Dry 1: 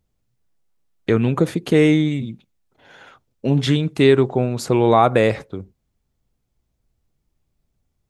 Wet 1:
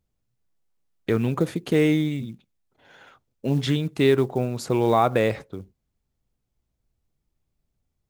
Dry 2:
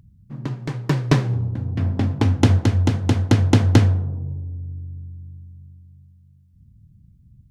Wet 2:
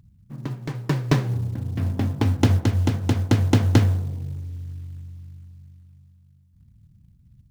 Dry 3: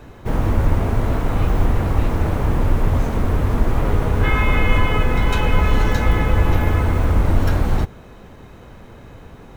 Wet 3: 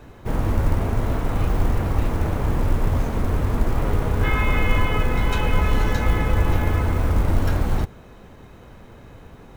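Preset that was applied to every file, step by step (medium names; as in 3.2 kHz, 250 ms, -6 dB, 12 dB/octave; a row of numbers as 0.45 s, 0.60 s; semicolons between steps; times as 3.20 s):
short-mantissa float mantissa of 4-bit; normalise loudness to -23 LUFS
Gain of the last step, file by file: -5.0 dB, -3.0 dB, -3.5 dB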